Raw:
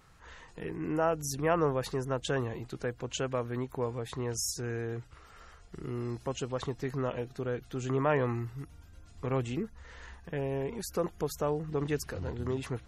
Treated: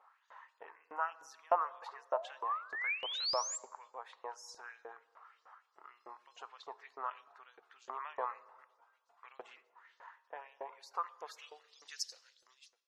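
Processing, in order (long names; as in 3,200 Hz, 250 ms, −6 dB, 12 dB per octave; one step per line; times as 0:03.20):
fade-out on the ending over 0.85 s
dynamic equaliser 4,600 Hz, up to +5 dB, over −53 dBFS, Q 1
band-pass filter sweep 940 Hz → 5,300 Hz, 0:10.96–0:11.80
sound drawn into the spectrogram rise, 0:01.92–0:03.58, 400–7,700 Hz −41 dBFS
auto-filter high-pass saw up 3.3 Hz 510–6,100 Hz
dense smooth reverb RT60 1.4 s, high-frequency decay 0.55×, DRR 17.5 dB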